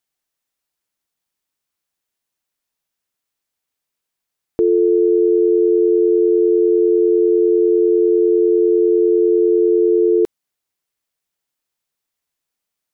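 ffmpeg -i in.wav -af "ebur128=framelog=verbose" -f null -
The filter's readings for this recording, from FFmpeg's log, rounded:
Integrated loudness:
  I:         -14.4 LUFS
  Threshold: -24.5 LUFS
Loudness range:
  LRA:         7.4 LU
  Threshold: -35.9 LUFS
  LRA low:   -21.5 LUFS
  LRA high:  -14.2 LUFS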